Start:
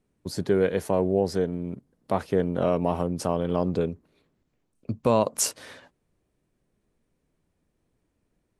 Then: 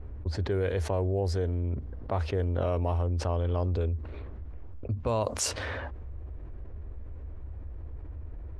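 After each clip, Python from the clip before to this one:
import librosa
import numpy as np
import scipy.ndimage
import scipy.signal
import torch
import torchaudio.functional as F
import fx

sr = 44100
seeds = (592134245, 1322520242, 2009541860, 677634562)

y = fx.env_lowpass(x, sr, base_hz=1400.0, full_db=-17.5)
y = fx.low_shelf_res(y, sr, hz=110.0, db=13.5, q=3.0)
y = fx.env_flatten(y, sr, amount_pct=70)
y = F.gain(torch.from_numpy(y), -8.0).numpy()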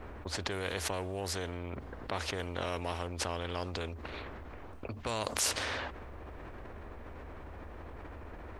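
y = fx.low_shelf(x, sr, hz=320.0, db=-7.5)
y = fx.spectral_comp(y, sr, ratio=2.0)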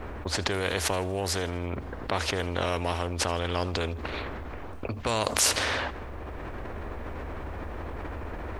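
y = fx.rider(x, sr, range_db=3, speed_s=2.0)
y = fx.echo_feedback(y, sr, ms=80, feedback_pct=51, wet_db=-22)
y = F.gain(torch.from_numpy(y), 7.0).numpy()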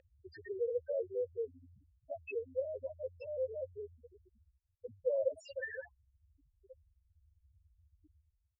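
y = fx.fade_out_tail(x, sr, length_s=0.6)
y = fx.spec_topn(y, sr, count=2)
y = fx.vowel_filter(y, sr, vowel='e')
y = F.gain(torch.from_numpy(y), 8.0).numpy()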